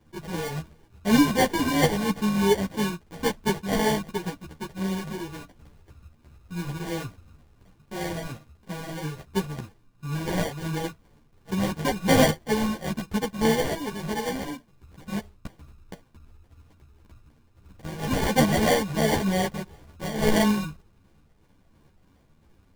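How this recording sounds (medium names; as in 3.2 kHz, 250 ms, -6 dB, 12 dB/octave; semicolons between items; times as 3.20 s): a buzz of ramps at a fixed pitch in blocks of 16 samples; phasing stages 6, 2.9 Hz, lowest notch 430–1600 Hz; aliases and images of a low sample rate 1.3 kHz, jitter 0%; a shimmering, thickened sound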